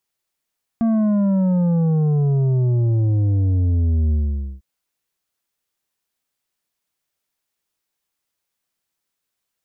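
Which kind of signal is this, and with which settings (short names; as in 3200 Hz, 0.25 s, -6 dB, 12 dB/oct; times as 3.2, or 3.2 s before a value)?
sub drop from 230 Hz, over 3.80 s, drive 7.5 dB, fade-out 0.49 s, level -15.5 dB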